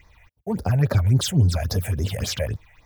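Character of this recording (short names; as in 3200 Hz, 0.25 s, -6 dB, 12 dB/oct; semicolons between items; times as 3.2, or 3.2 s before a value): phasing stages 6, 3.6 Hz, lowest notch 290–2800 Hz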